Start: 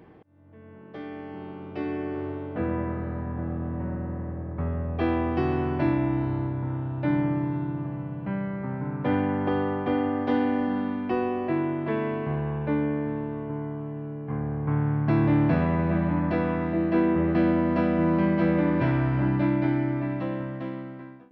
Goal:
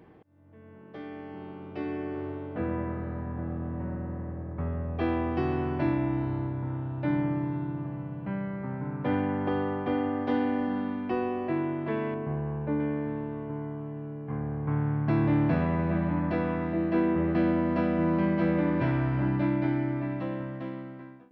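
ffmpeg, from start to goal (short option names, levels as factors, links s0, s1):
-filter_complex "[0:a]asettb=1/sr,asplit=3[s0][s1][s2];[s0]atrim=end=12.144[s3];[s1]atrim=start=12.14:end=12.8,asetpts=PTS-STARTPTS,afade=t=in:d=0.004:c=qsin,afade=t=out:st=0.656:d=0.004:c=qsin,lowpass=f=1200:p=1[s4];[s2]atrim=start=12.796[s5];[s3][s4]acrossfade=d=0.004:c1=hsin:c2=qsin[s6];[s6][s5]acrossfade=d=0.004:c1=qsin:c2=hsin,volume=0.708"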